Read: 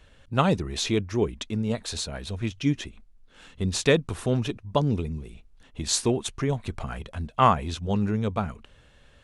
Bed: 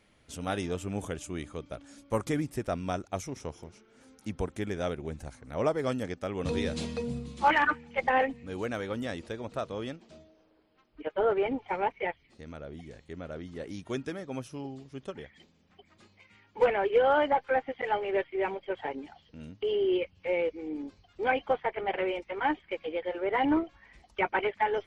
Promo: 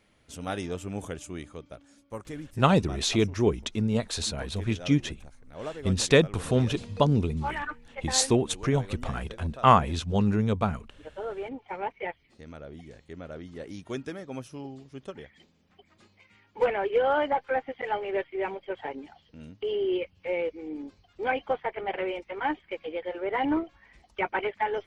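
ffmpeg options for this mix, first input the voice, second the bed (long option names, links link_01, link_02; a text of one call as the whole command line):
ffmpeg -i stem1.wav -i stem2.wav -filter_complex "[0:a]adelay=2250,volume=1dB[link_01];[1:a]volume=8dB,afade=type=out:start_time=1.23:duration=0.88:silence=0.375837,afade=type=in:start_time=11.32:duration=0.97:silence=0.375837[link_02];[link_01][link_02]amix=inputs=2:normalize=0" out.wav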